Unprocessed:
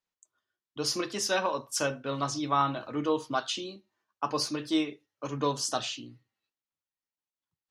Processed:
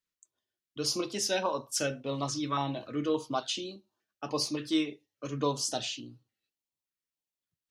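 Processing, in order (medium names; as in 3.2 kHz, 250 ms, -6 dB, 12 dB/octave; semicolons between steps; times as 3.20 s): step-sequenced notch 3.5 Hz 770–2000 Hz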